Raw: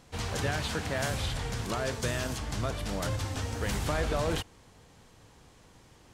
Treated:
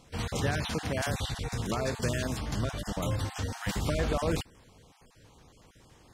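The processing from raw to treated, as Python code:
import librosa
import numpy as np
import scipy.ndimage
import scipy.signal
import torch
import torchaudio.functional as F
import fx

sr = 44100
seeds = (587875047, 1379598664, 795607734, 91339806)

y = fx.spec_dropout(x, sr, seeds[0], share_pct=24)
y = fx.dynamic_eq(y, sr, hz=200.0, q=0.85, threshold_db=-43.0, ratio=4.0, max_db=4)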